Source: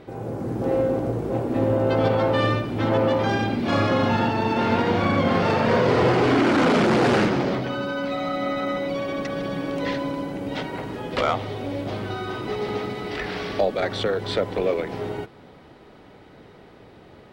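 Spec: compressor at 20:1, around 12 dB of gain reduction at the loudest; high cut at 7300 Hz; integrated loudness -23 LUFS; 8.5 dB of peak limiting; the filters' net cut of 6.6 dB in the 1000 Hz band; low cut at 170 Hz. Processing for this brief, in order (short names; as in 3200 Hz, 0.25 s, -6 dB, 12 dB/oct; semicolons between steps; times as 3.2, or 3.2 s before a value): HPF 170 Hz; LPF 7300 Hz; bell 1000 Hz -9 dB; compressor 20:1, threshold -29 dBFS; gain +13 dB; limiter -14.5 dBFS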